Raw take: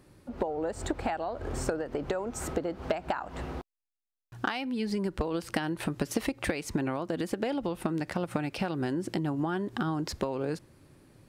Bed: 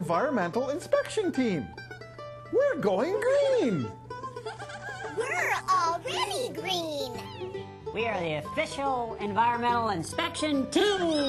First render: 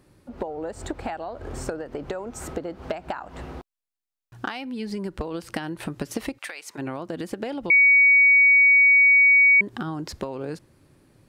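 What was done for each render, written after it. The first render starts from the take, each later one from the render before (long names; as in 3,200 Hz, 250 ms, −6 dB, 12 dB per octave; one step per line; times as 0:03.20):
0:06.37–0:06.77: high-pass filter 1,400 Hz → 620 Hz
0:07.70–0:09.61: beep over 2,250 Hz −12 dBFS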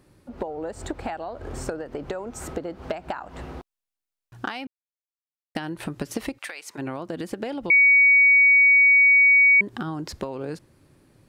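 0:04.67–0:05.55: silence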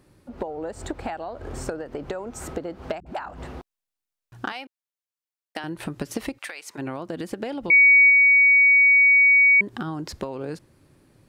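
0:03.00–0:03.53: all-pass dispersion highs, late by 63 ms, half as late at 310 Hz
0:04.52–0:05.64: high-pass filter 430 Hz
0:07.61–0:08.10: double-tracking delay 24 ms −13 dB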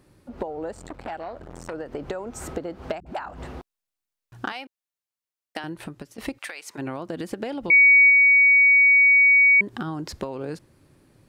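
0:00.74–0:01.74: saturating transformer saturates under 1,100 Hz
0:05.58–0:06.18: fade out, to −19 dB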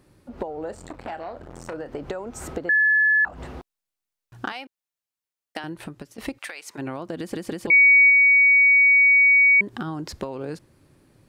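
0:00.57–0:01.99: double-tracking delay 33 ms −12 dB
0:02.69–0:03.25: beep over 1,720 Hz −15 dBFS
0:07.19: stutter in place 0.16 s, 3 plays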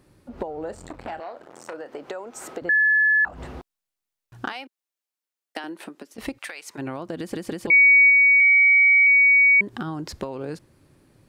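0:01.20–0:02.62: Bessel high-pass filter 420 Hz
0:04.48–0:06.15: Butterworth high-pass 220 Hz
0:08.40–0:09.07: low-pass filter 4,500 Hz 24 dB per octave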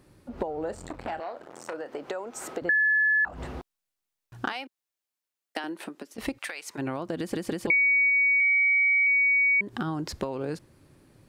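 downward compressor 6 to 1, threshold −21 dBFS, peak gain reduction 8.5 dB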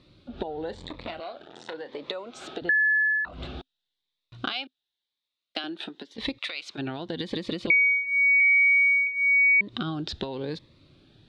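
low-pass with resonance 3,700 Hz, resonance Q 7
phaser whose notches keep moving one way rising 0.93 Hz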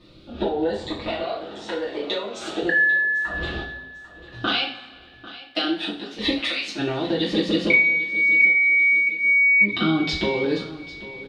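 repeating echo 795 ms, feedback 39%, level −17 dB
coupled-rooms reverb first 0.39 s, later 1.7 s, from −18 dB, DRR −8 dB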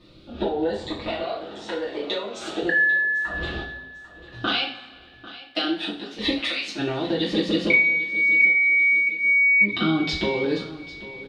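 level −1 dB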